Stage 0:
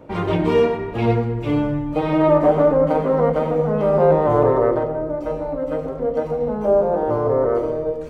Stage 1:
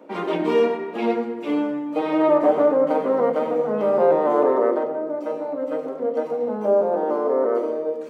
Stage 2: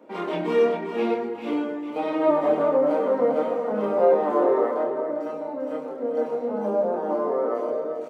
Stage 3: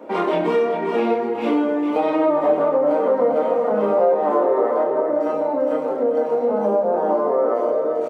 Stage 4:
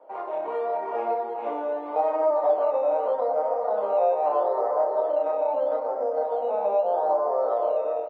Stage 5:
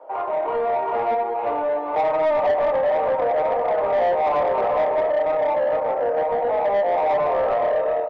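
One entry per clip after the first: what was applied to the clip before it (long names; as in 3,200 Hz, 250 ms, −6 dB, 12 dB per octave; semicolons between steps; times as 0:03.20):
Butterworth high-pass 200 Hz 48 dB per octave; level −2 dB
multi-voice chorus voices 2, 0.39 Hz, delay 27 ms, depth 3 ms; single-tap delay 397 ms −8.5 dB
parametric band 710 Hz +5 dB 2.3 octaves; downward compressor 3 to 1, threshold −26 dBFS, peak gain reduction 12.5 dB; double-tracking delay 44 ms −12 dB; level +8 dB
automatic gain control; in parallel at −11 dB: sample-and-hold swept by an LFO 11×, swing 60% 0.79 Hz; on the sum: four-pole ladder band-pass 830 Hz, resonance 45%; level −3.5 dB
mid-hump overdrive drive 19 dB, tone 1,700 Hz, clips at −10.5 dBFS; level −1.5 dB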